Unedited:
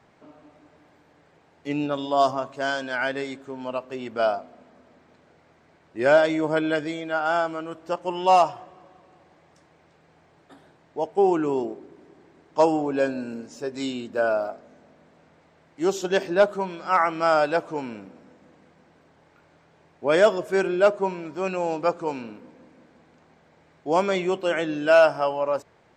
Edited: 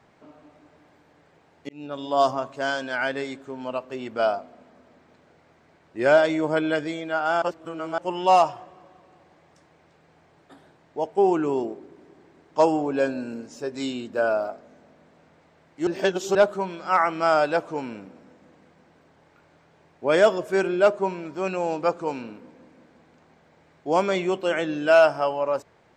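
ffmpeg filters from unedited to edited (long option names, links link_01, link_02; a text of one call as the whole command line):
ffmpeg -i in.wav -filter_complex "[0:a]asplit=6[link_01][link_02][link_03][link_04][link_05][link_06];[link_01]atrim=end=1.69,asetpts=PTS-STARTPTS,afade=type=out:start_time=1.686:duration=0.004:curve=hsin[link_07];[link_02]atrim=start=1.69:end=7.422,asetpts=PTS-STARTPTS,afade=type=in:duration=0.5[link_08];[link_03]atrim=start=7.418:end=7.982,asetpts=PTS-STARTPTS,areverse[link_09];[link_04]atrim=start=7.978:end=15.872[link_10];[link_05]atrim=start=15.868:end=16.352,asetpts=PTS-STARTPTS,areverse[link_11];[link_06]atrim=start=16.348[link_12];[link_07][link_08]concat=n=2:v=0:a=1[link_13];[link_13][link_09]acrossfade=duration=0.004:curve1=hsin:curve2=hsin[link_14];[link_14][link_10]acrossfade=duration=0.004:curve1=hsin:curve2=hsin[link_15];[link_15][link_11]acrossfade=duration=0.004:curve1=hsin:curve2=hsin[link_16];[link_16][link_12]acrossfade=duration=0.004:curve1=hsin:curve2=hsin" out.wav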